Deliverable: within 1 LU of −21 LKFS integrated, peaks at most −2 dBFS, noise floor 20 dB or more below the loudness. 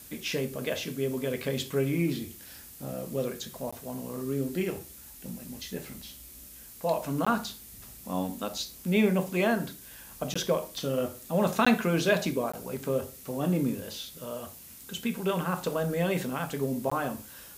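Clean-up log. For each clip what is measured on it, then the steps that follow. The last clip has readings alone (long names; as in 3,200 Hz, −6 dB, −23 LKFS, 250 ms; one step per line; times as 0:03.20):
number of dropouts 6; longest dropout 15 ms; background noise floor −48 dBFS; target noise floor −51 dBFS; integrated loudness −30.5 LKFS; sample peak −11.5 dBFS; target loudness −21.0 LKFS
→ repair the gap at 0:03.71/0:07.25/0:10.34/0:11.65/0:12.52/0:16.90, 15 ms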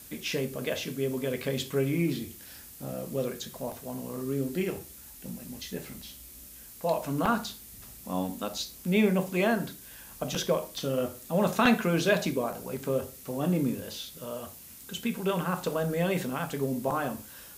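number of dropouts 0; background noise floor −48 dBFS; target noise floor −51 dBFS
→ noise reduction from a noise print 6 dB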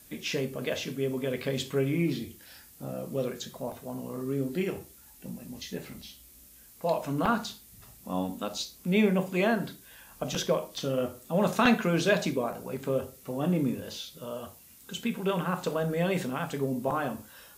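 background noise floor −54 dBFS; integrated loudness −30.5 LKFS; sample peak −10.0 dBFS; target loudness −21.0 LKFS
→ level +9.5 dB
brickwall limiter −2 dBFS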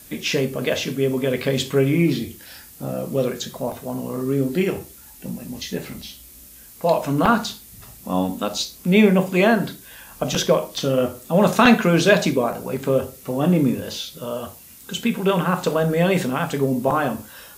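integrated loudness −21.0 LKFS; sample peak −2.0 dBFS; background noise floor −45 dBFS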